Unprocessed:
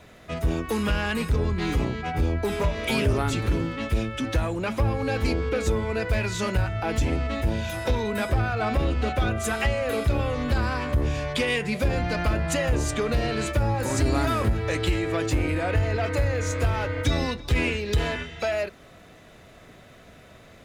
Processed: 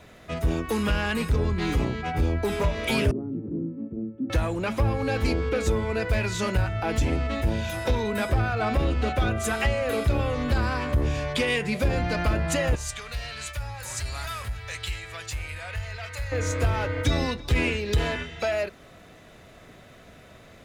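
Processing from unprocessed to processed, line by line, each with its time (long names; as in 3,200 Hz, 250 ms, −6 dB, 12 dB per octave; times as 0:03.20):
0:03.11–0:04.30: flat-topped band-pass 240 Hz, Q 1.2
0:12.75–0:16.32: guitar amp tone stack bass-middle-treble 10-0-10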